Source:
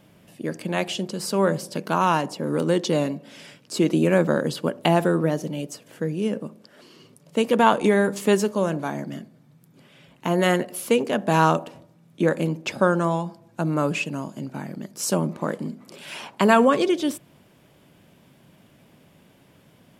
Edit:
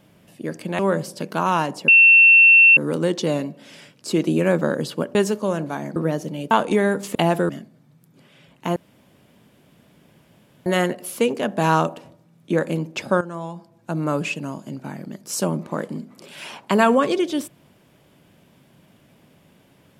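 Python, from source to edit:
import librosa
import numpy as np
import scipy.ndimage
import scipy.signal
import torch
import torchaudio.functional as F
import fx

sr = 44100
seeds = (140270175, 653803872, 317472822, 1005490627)

y = fx.edit(x, sr, fx.cut(start_s=0.79, length_s=0.55),
    fx.insert_tone(at_s=2.43, length_s=0.89, hz=2700.0, db=-7.5),
    fx.swap(start_s=4.81, length_s=0.34, other_s=8.28, other_length_s=0.81),
    fx.cut(start_s=5.7, length_s=1.94),
    fx.insert_room_tone(at_s=10.36, length_s=1.9),
    fx.fade_in_from(start_s=12.91, length_s=0.85, floor_db=-13.5), tone=tone)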